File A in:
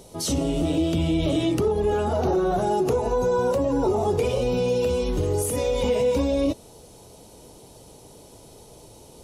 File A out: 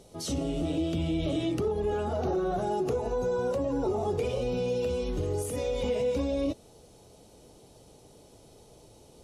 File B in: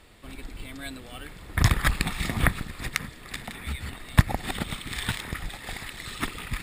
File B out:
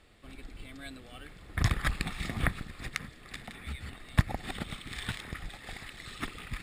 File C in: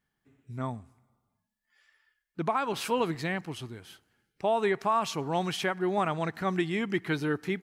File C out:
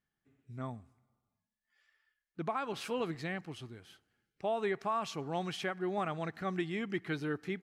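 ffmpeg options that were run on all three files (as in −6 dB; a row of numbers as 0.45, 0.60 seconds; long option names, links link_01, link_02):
-af "highshelf=frequency=11000:gain=-10.5,bandreject=frequency=950:width=9.7,volume=-6.5dB"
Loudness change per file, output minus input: −6.5, −7.0, −7.0 LU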